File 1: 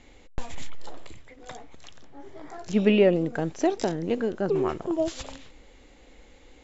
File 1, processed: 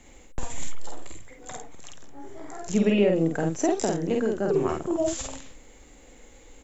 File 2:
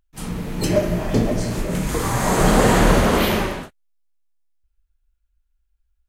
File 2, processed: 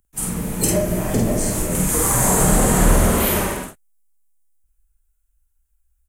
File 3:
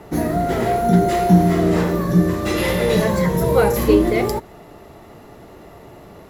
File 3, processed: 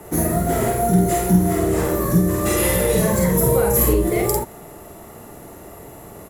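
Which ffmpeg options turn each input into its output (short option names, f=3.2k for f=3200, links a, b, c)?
-filter_complex "[0:a]acrossover=split=160[a][b];[b]acompressor=threshold=-19dB:ratio=5[c];[a][c]amix=inputs=2:normalize=0,highshelf=f=6.3k:t=q:w=1.5:g=11.5,asplit=2[d][e];[e]adelay=49,volume=-2.5dB[f];[d][f]amix=inputs=2:normalize=0"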